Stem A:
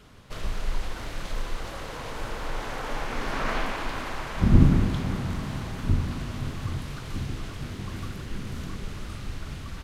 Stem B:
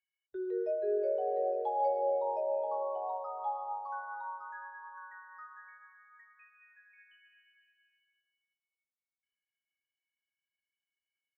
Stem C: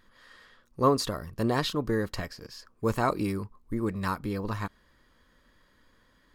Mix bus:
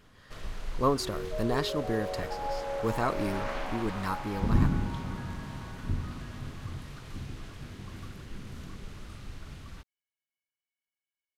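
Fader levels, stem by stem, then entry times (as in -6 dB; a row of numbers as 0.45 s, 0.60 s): -8.0 dB, -4.5 dB, -3.0 dB; 0.00 s, 0.65 s, 0.00 s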